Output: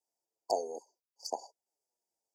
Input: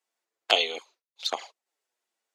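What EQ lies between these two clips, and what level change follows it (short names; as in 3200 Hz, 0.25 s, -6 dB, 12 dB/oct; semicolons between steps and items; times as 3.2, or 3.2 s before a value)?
brick-wall FIR band-stop 1000–4500 Hz; -4.0 dB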